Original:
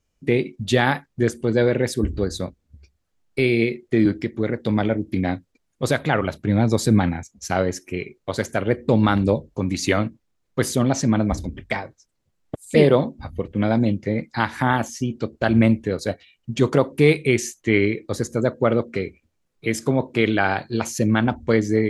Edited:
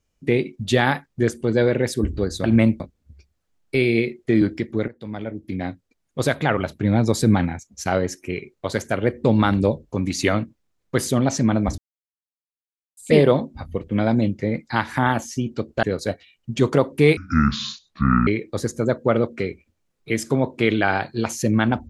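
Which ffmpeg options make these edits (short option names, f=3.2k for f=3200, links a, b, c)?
-filter_complex "[0:a]asplit=9[a][b][c][d][e][f][g][h][i];[a]atrim=end=2.442[j];[b]atrim=start=15.468:end=15.832[k];[c]atrim=start=2.438:end=4.52,asetpts=PTS-STARTPTS,afade=t=out:st=2.078:d=0.004:c=hsin:silence=0.125893[l];[d]atrim=start=4.52:end=11.42,asetpts=PTS-STARTPTS,afade=t=in:d=1.41:silence=0.125893,afade=t=out:st=6.896:d=0.004:c=hsin[m];[e]atrim=start=11.42:end=12.61,asetpts=PTS-STARTPTS,volume=0[n];[f]atrim=start=12.61:end=15.472,asetpts=PTS-STARTPTS,afade=t=in:d=0.004:c=hsin[o];[g]atrim=start=15.828:end=17.174[p];[h]atrim=start=17.17:end=17.83,asetpts=PTS-STARTPTS,asetrate=26460,aresample=44100[q];[i]atrim=start=17.826[r];[j][k]acrossfade=d=0.004:c1=hsin:c2=hsin[s];[l][m][n][o]concat=n=4:v=0:a=1[t];[s][t]acrossfade=d=0.004:c1=hsin:c2=hsin[u];[u][p]acrossfade=d=0.004:c1=hsin:c2=hsin[v];[v][q]acrossfade=d=0.004:c1=hsin:c2=hsin[w];[w][r]acrossfade=d=0.004:c1=hsin:c2=hsin"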